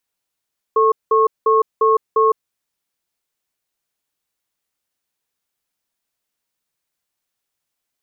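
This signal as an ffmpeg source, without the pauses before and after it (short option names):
-f lavfi -i "aevalsrc='0.211*(sin(2*PI*442*t)+sin(2*PI*1090*t))*clip(min(mod(t,0.35),0.16-mod(t,0.35))/0.005,0,1)':d=1.6:s=44100"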